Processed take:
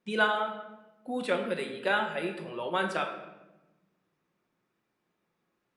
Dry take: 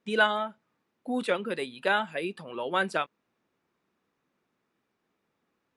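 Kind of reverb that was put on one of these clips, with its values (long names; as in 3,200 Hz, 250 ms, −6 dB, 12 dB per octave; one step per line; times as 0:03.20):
rectangular room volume 490 cubic metres, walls mixed, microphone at 0.93 metres
level −3 dB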